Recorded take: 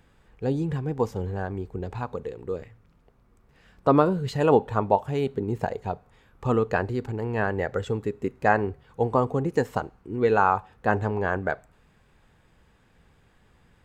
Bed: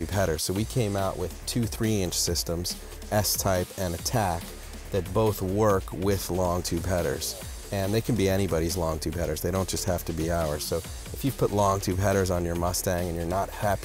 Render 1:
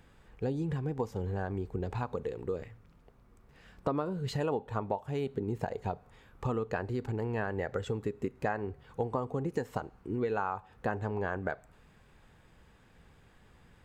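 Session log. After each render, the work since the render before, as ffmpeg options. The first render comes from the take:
-af "acompressor=threshold=-30dB:ratio=5"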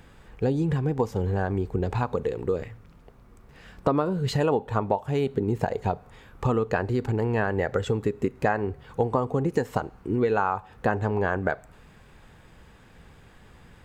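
-af "volume=8.5dB"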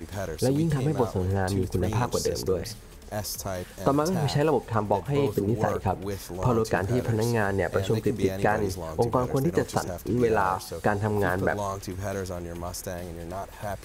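-filter_complex "[1:a]volume=-7.5dB[a];[0:a][a]amix=inputs=2:normalize=0"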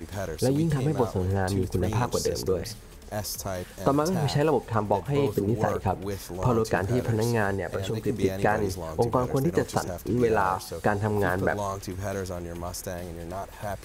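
-filter_complex "[0:a]asplit=3[a][b][c];[a]afade=t=out:st=7.54:d=0.02[d];[b]acompressor=threshold=-25dB:ratio=4:attack=3.2:release=140:knee=1:detection=peak,afade=t=in:st=7.54:d=0.02,afade=t=out:st=8.07:d=0.02[e];[c]afade=t=in:st=8.07:d=0.02[f];[d][e][f]amix=inputs=3:normalize=0"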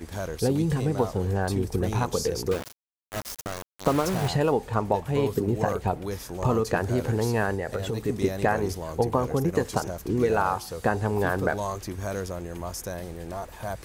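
-filter_complex "[0:a]asettb=1/sr,asplit=3[a][b][c];[a]atrim=end=2.514[d];[b]atrim=start=2.51:end=4.28,asetpts=PTS-STARTPTS,afade=t=in:d=0.004:c=qsin,afade=t=out:st=1.766:d=0.004:c=qsin,aeval=exprs='val(0)*gte(abs(val(0)),0.0398)':c=same[e];[c]atrim=start=4.276[f];[d][e]acrossfade=d=0.004:c1=hsin:c2=qsin[g];[g][f]acrossfade=d=0.004:c1=qsin:c2=hsin"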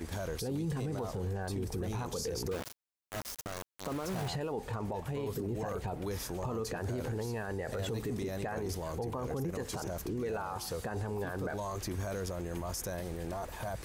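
-af "acompressor=threshold=-27dB:ratio=3,alimiter=level_in=4.5dB:limit=-24dB:level=0:latency=1:release=10,volume=-4.5dB"

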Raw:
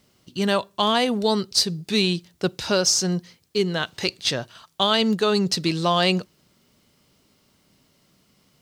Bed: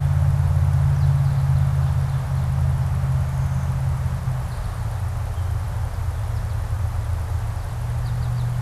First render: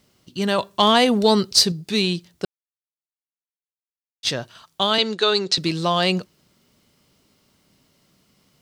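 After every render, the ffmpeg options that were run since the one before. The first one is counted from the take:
-filter_complex "[0:a]asettb=1/sr,asplit=3[a][b][c];[a]atrim=end=0.584[d];[b]atrim=start=0.58:end=1.72,asetpts=PTS-STARTPTS,afade=t=in:d=0.004:c=qsin,afade=t=out:st=1.136:d=0.004:c=qsin,acontrast=29[e];[c]atrim=start=1.716[f];[d][e]acrossfade=d=0.004:c1=hsin:c2=qsin[g];[g][f]acrossfade=d=0.004:c1=qsin:c2=hsin,asettb=1/sr,asplit=3[h][i][j];[h]atrim=end=4.984[k];[i]atrim=start=4.98:end=5.58,asetpts=PTS-STARTPTS,afade=t=in:d=0.004:c=qsin,afade=t=out:st=0.596:d=0.004:c=qsin,highpass=340,equalizer=f=360:t=q:w=4:g=5,equalizer=f=1.5k:t=q:w=4:g=5,equalizer=f=2.3k:t=q:w=4:g=4,equalizer=f=3.8k:t=q:w=4:g=10,lowpass=f=8.4k:w=0.5412,lowpass=f=8.4k:w=1.3066[l];[j]atrim=start=5.576[m];[k][l]acrossfade=d=0.004:c1=hsin:c2=qsin[n];[n][m]acrossfade=d=0.004:c1=qsin:c2=hsin,asplit=3[o][p][q];[o]atrim=end=2.45,asetpts=PTS-STARTPTS,afade=t=out:st=2.446:d=0.004:c=hsin[r];[p]atrim=start=2.45:end=4.23,asetpts=PTS-STARTPTS,volume=0[s];[q]atrim=start=4.23,asetpts=PTS-STARTPTS,afade=t=in:d=0.004:c=hsin[t];[r][s][t]concat=n=3:v=0:a=1"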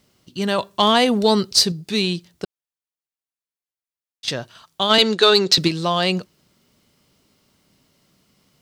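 -filter_complex "[0:a]asettb=1/sr,asplit=3[a][b][c];[a]atrim=end=2.444[d];[b]atrim=start=2.44:end=4.28,asetpts=PTS-STARTPTS,afade=t=in:d=0.004:c=qsin,afade=t=out:st=1.836:d=0.004:c=qsin,acompressor=threshold=-30dB:ratio=6:attack=3.2:release=140:knee=1:detection=peak[e];[c]atrim=start=4.276[f];[d][e]acrossfade=d=0.004:c1=hsin:c2=qsin[g];[g][f]acrossfade=d=0.004:c1=qsin:c2=hsin,asplit=3[h][i][j];[h]afade=t=out:st=4.89:d=0.02[k];[i]acontrast=55,afade=t=in:st=4.89:d=0.02,afade=t=out:st=5.67:d=0.02[l];[j]afade=t=in:st=5.67:d=0.02[m];[k][l][m]amix=inputs=3:normalize=0"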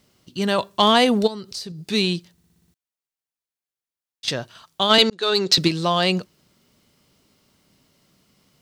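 -filter_complex "[0:a]asplit=3[a][b][c];[a]afade=t=out:st=1.26:d=0.02[d];[b]acompressor=threshold=-31dB:ratio=5:attack=3.2:release=140:knee=1:detection=peak,afade=t=in:st=1.26:d=0.02,afade=t=out:st=1.82:d=0.02[e];[c]afade=t=in:st=1.82:d=0.02[f];[d][e][f]amix=inputs=3:normalize=0,asplit=9[g][h][i][j][k][l][m][n][o];[g]atrim=end=2.382[p];[h]atrim=start=2.318:end=2.382[q];[i]atrim=start=2.318:end=2.382[r];[j]atrim=start=2.318:end=2.382[s];[k]atrim=start=2.318:end=2.382[t];[l]atrim=start=2.318:end=2.382[u];[m]atrim=start=2.318:end=2.382[v];[n]atrim=start=2.738:end=5.1,asetpts=PTS-STARTPTS,afade=t=out:st=2.358:d=0.004:c=hsin[w];[o]atrim=start=5.1,asetpts=PTS-STARTPTS,afade=t=in:d=0.66:c=qsin[x];[p][q]acrossfade=d=0.004:c1=hsin:c2=hsin[y];[y][r]acrossfade=d=0.004:c1=hsin:c2=hsin[z];[z][s]acrossfade=d=0.004:c1=hsin:c2=hsin[aa];[aa][t]acrossfade=d=0.004:c1=hsin:c2=hsin[ab];[ab][u]acrossfade=d=0.004:c1=hsin:c2=hsin[ac];[ac][v]acrossfade=d=0.004:c1=hsin:c2=hsin[ad];[w][x]concat=n=2:v=0:a=1[ae];[ad][ae]acrossfade=d=0.004:c1=hsin:c2=hsin"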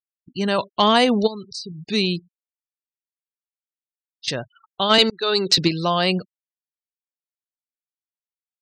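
-af "bandreject=f=3.4k:w=15,afftfilt=real='re*gte(hypot(re,im),0.02)':imag='im*gte(hypot(re,im),0.02)':win_size=1024:overlap=0.75"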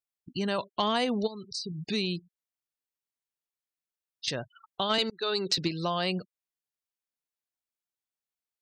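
-af "acompressor=threshold=-34dB:ratio=2"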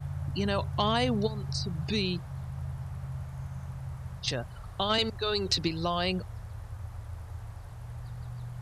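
-filter_complex "[1:a]volume=-16.5dB[a];[0:a][a]amix=inputs=2:normalize=0"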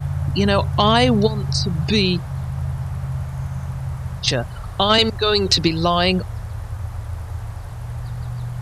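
-af "volume=12dB,alimiter=limit=-3dB:level=0:latency=1"

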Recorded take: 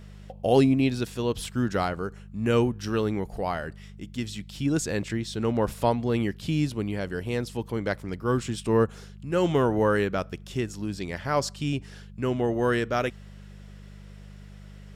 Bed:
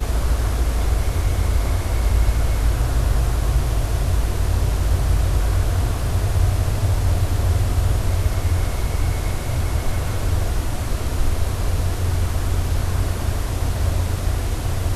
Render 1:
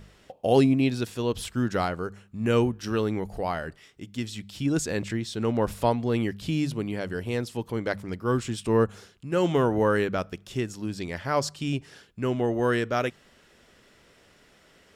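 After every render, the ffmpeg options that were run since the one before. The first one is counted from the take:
-af "bandreject=f=50:t=h:w=4,bandreject=f=100:t=h:w=4,bandreject=f=150:t=h:w=4,bandreject=f=200:t=h:w=4"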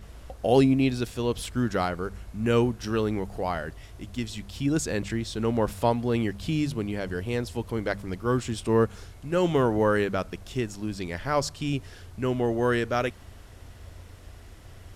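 -filter_complex "[1:a]volume=-25dB[a];[0:a][a]amix=inputs=2:normalize=0"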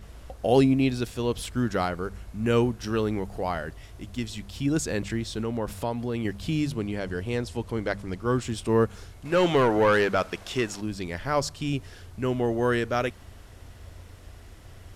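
-filter_complex "[0:a]asettb=1/sr,asplit=3[a][b][c];[a]atrim=end=5.414[d];[b]atrim=start=5.41:end=6.25,asetpts=PTS-STARTPTS,afade=t=in:d=0.004:c=qsin,afade=t=out:st=0.836:d=0.004:c=qsin,acompressor=threshold=-28dB:ratio=2:attack=3.2:release=140:knee=1:detection=peak[e];[c]atrim=start=6.246[f];[d][e]acrossfade=d=0.004:c1=hsin:c2=qsin[g];[g][f]acrossfade=d=0.004:c1=qsin:c2=hsin,asettb=1/sr,asplit=3[h][i][j];[h]atrim=end=6.754[k];[i]atrim=start=6.75:end=8.42,asetpts=PTS-STARTPTS,afade=t=in:d=0.004:c=qsin,afade=t=out:st=1.666:d=0.004:c=qsin,lowpass=11k[l];[j]atrim=start=8.416[m];[k][l]acrossfade=d=0.004:c1=hsin:c2=qsin[n];[n][m]acrossfade=d=0.004:c1=qsin:c2=hsin,asettb=1/sr,asplit=3[o][p][q];[o]atrim=end=9.254[r];[p]atrim=start=9.25:end=10.81,asetpts=PTS-STARTPTS,afade=t=in:d=0.004:c=qsin,afade=t=out:st=1.556:d=0.004:c=qsin,asplit=2[s][t];[t]highpass=f=720:p=1,volume=15dB,asoftclip=type=tanh:threshold=-12dB[u];[s][u]amix=inputs=2:normalize=0,lowpass=f=5k:p=1,volume=-6dB[v];[q]atrim=start=10.806[w];[r][v]acrossfade=d=0.004:c1=hsin:c2=qsin[x];[x][w]acrossfade=d=0.004:c1=qsin:c2=hsin"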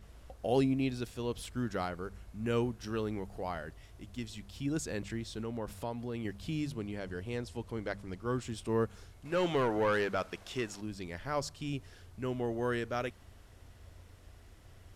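-af "volume=-9dB"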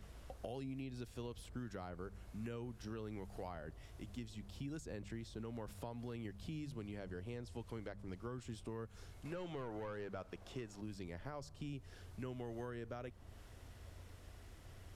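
-filter_complex "[0:a]alimiter=level_in=3dB:limit=-24dB:level=0:latency=1:release=174,volume=-3dB,acrossover=split=110|1100[a][b][c];[a]acompressor=threshold=-52dB:ratio=4[d];[b]acompressor=threshold=-46dB:ratio=4[e];[c]acompressor=threshold=-59dB:ratio=4[f];[d][e][f]amix=inputs=3:normalize=0"

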